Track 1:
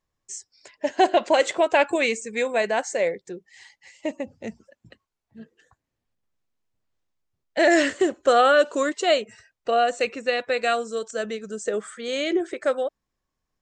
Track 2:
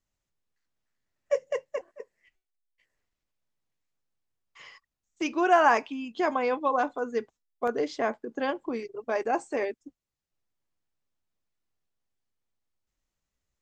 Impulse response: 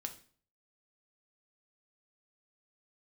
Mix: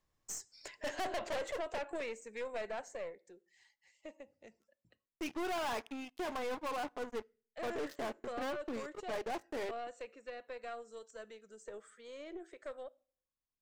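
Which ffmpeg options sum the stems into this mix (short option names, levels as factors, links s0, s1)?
-filter_complex "[0:a]acrossover=split=310|1700[s0][s1][s2];[s0]acompressor=threshold=0.00282:ratio=4[s3];[s1]acompressor=threshold=0.126:ratio=4[s4];[s2]acompressor=threshold=0.0126:ratio=4[s5];[s3][s4][s5]amix=inputs=3:normalize=0,volume=0.841,afade=t=out:st=0.92:d=0.64:silence=0.251189,afade=t=out:st=2.6:d=0.57:silence=0.446684,asplit=2[s6][s7];[s7]volume=0.398[s8];[1:a]aeval=exprs='sgn(val(0))*max(abs(val(0))-0.0119,0)':c=same,volume=0.841,asplit=2[s9][s10];[s10]volume=0.075[s11];[2:a]atrim=start_sample=2205[s12];[s8][s11]amix=inputs=2:normalize=0[s13];[s13][s12]afir=irnorm=-1:irlink=0[s14];[s6][s9][s14]amix=inputs=3:normalize=0,aeval=exprs='(tanh(56.2*val(0)+0.4)-tanh(0.4))/56.2':c=same"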